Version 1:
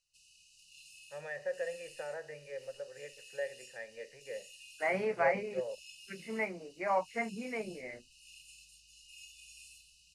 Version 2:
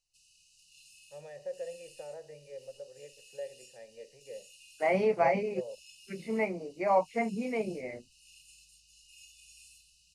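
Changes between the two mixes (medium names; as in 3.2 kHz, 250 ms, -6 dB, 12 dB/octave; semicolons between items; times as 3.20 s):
first voice: add peaking EQ 1.8 kHz -4.5 dB 2 oct; second voice +7.5 dB; master: add peaking EQ 1.6 kHz -13.5 dB 0.89 oct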